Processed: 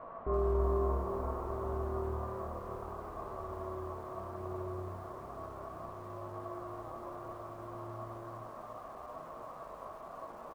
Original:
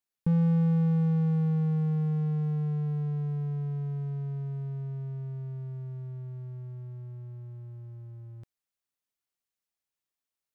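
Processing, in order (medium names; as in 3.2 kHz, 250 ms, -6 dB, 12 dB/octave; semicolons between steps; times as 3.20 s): octave divider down 2 oct, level -4 dB; reverb removal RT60 0.59 s; bass shelf 140 Hz -6 dB; in parallel at -8.5 dB: integer overflow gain 30.5 dB; on the sum: word length cut 6-bit, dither triangular; four-pole ladder low-pass 930 Hz, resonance 80%; chorus voices 4, 0.19 Hz, delay 14 ms, depth 4 ms; ring modulator 230 Hz; doubling 43 ms -10.5 dB; on a send: flutter echo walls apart 10.7 m, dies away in 0.28 s; on the sum: bit-crushed delay 334 ms, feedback 35%, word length 11-bit, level -10.5 dB; trim +10.5 dB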